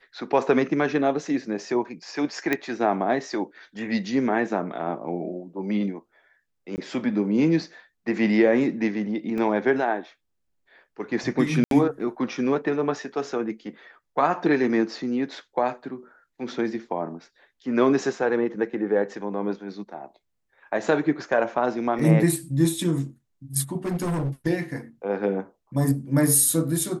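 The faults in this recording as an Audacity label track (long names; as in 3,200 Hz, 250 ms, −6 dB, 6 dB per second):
2.530000	2.530000	click −10 dBFS
6.760000	6.780000	drop-out 19 ms
9.380000	9.380000	drop-out 2.5 ms
11.640000	11.710000	drop-out 72 ms
21.990000	21.990000	drop-out 3.7 ms
23.850000	24.300000	clipping −23 dBFS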